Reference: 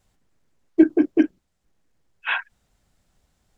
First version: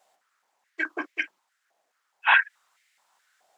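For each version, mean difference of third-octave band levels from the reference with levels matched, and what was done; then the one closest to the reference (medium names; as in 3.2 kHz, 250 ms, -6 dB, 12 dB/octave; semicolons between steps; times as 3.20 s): 7.0 dB: step-sequenced high-pass 4.7 Hz 690–2100 Hz; trim +2 dB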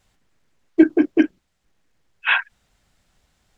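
1.0 dB: peaking EQ 2.5 kHz +6 dB 2.7 oct; trim +1 dB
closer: second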